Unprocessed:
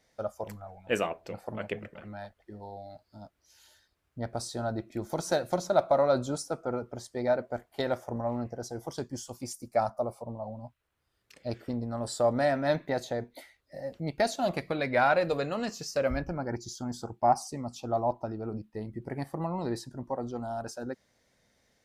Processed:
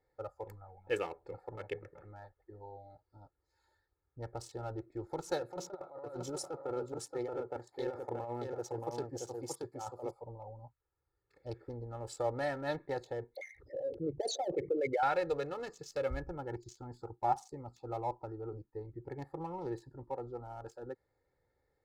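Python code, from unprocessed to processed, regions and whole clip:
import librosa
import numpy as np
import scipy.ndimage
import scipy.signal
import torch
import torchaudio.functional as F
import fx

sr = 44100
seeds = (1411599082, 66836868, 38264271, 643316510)

y = fx.chain(x, sr, fx.highpass(hz=140.0, slope=12),
    fx.over_compress(threshold_db=-33.0, ratio=-1.0),
    fx.echo_single(ms=627, db=-3.5), at=(5.41, 10.11))
y = fx.chain(y, sr, fx.envelope_sharpen(power=3.0),
    fx.highpass(hz=120.0, slope=6),
    fx.env_flatten(amount_pct=50), at=(13.35, 15.03))
y = fx.wiener(y, sr, points=15)
y = y + 0.85 * np.pad(y, (int(2.3 * sr / 1000.0), 0))[:len(y)]
y = F.gain(torch.from_numpy(y), -8.5).numpy()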